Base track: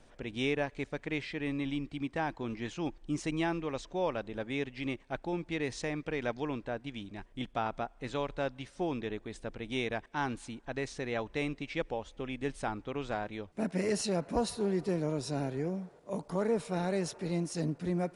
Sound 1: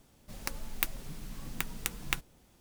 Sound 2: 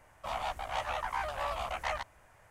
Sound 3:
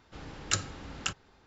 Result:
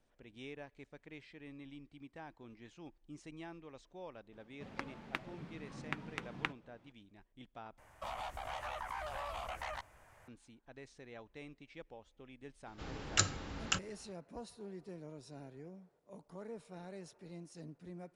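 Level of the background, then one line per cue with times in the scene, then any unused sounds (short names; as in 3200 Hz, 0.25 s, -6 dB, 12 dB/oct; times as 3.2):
base track -17 dB
4.32 add 1 -1 dB + BPF 120–2200 Hz
7.78 replace with 2 -1.5 dB + compressor 5:1, threshold -37 dBFS
12.66 add 3 -1 dB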